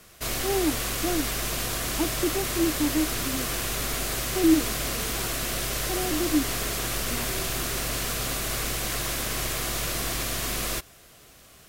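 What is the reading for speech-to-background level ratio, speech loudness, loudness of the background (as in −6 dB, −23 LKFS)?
−1.0 dB, −28.5 LKFS, −27.5 LKFS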